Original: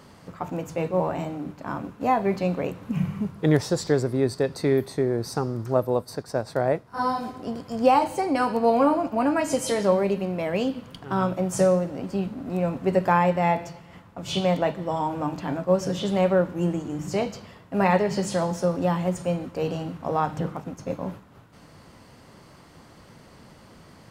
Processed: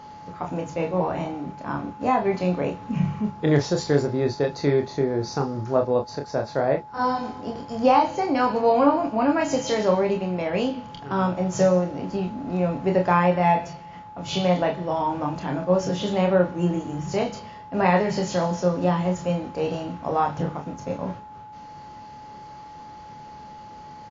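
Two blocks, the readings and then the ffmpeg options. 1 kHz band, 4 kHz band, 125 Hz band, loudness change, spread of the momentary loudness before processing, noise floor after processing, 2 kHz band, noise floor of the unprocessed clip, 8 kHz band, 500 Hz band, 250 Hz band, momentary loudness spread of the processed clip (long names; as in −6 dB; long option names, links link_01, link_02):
+2.0 dB, +1.5 dB, +1.5 dB, +1.5 dB, 11 LU, −42 dBFS, +1.5 dB, −51 dBFS, −1.5 dB, +1.0 dB, +1.0 dB, 22 LU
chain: -af "aeval=exprs='val(0)+0.00794*sin(2*PI*850*n/s)':channel_layout=same,aecho=1:1:28|42:0.562|0.282" -ar 16000 -c:a wmav2 -b:a 64k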